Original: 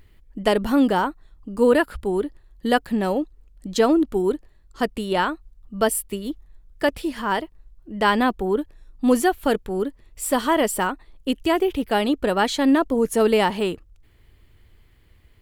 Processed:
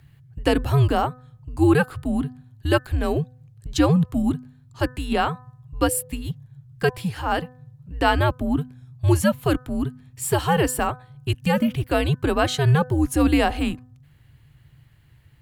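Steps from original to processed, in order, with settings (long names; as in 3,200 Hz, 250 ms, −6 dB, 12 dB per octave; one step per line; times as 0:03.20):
frequency shifter −150 Hz
hum removal 251.7 Hz, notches 7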